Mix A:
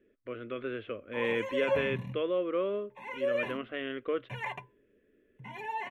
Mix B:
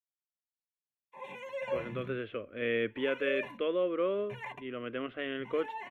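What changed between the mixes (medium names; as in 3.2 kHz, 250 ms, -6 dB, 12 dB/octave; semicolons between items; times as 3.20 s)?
speech: entry +1.45 s; background -5.5 dB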